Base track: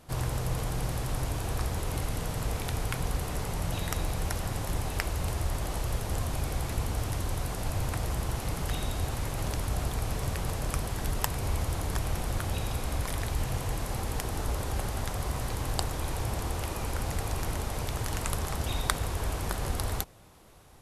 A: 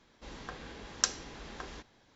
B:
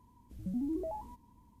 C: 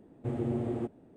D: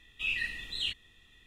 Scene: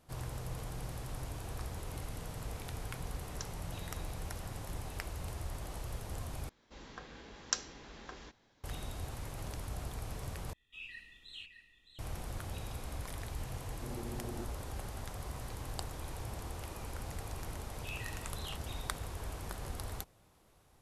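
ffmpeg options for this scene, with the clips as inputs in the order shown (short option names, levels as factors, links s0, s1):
-filter_complex "[1:a]asplit=2[s0][s1];[4:a]asplit=2[s2][s3];[0:a]volume=0.299[s4];[s2]aecho=1:1:614:0.376[s5];[3:a]alimiter=level_in=1.41:limit=0.0631:level=0:latency=1:release=278,volume=0.708[s6];[s4]asplit=3[s7][s8][s9];[s7]atrim=end=6.494[s10];[s1]atrim=end=2.15,asetpts=PTS-STARTPTS,volume=0.562[s11];[s8]atrim=start=8.636:end=10.534[s12];[s5]atrim=end=1.46,asetpts=PTS-STARTPTS,volume=0.158[s13];[s9]atrim=start=11.986[s14];[s0]atrim=end=2.15,asetpts=PTS-STARTPTS,volume=0.126,afade=t=in:d=0.004:c=hsin,afade=t=out:st=2.146:d=0.004:c=hsin,adelay=2370[s15];[s6]atrim=end=1.16,asetpts=PTS-STARTPTS,volume=0.398,afade=t=in:d=0.004:c=hsin,afade=t=out:st=1.156:d=0.004:c=hsin,adelay=13580[s16];[s3]atrim=end=1.46,asetpts=PTS-STARTPTS,volume=0.2,afade=t=in:d=0.004:c=hsin,afade=t=out:st=1.456:d=0.004:c=hsin,adelay=777924S[s17];[s10][s11]acrossfade=d=0.004:c1=hsin:c2=hsin[s18];[s18][s12]acrossfade=d=0.004:c1=hsin:c2=hsin[s19];[s19][s13]acrossfade=d=0.004:c1=hsin:c2=hsin[s20];[s20][s14]acrossfade=d=0.004:c1=hsin:c2=hsin[s21];[s21][s15][s16][s17]amix=inputs=4:normalize=0"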